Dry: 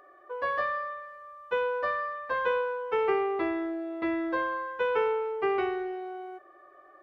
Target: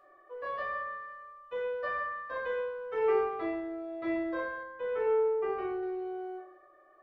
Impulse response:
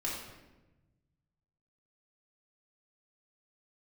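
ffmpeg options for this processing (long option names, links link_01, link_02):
-filter_complex "[1:a]atrim=start_sample=2205,asetrate=83790,aresample=44100[link_01];[0:a][link_01]afir=irnorm=-1:irlink=0,tremolo=f=0.95:d=0.35,asettb=1/sr,asplit=3[link_02][link_03][link_04];[link_02]atrim=end=4.634[link_05];[link_03]atrim=start=4.63:end=5.83,asetpts=PTS-STARTPTS,afade=type=in:duration=0.004:curve=qsin,afade=type=out:start_time=1.196:duration=0.004:curve=qsin,highshelf=frequency=2600:gain=-9[link_06];[link_04]atrim=start=5.826[link_07];[link_05][link_06]acrossfade=duration=0.004:curve1=hsin:curve2=qsin[link_08];[link_08][link_07]acrossfade=duration=0.004:curve1=qsin:curve2=hsin,volume=-2dB"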